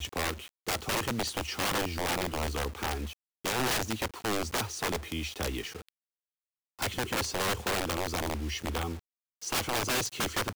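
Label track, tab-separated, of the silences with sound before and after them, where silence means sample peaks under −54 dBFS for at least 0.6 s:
5.890000	6.790000	silence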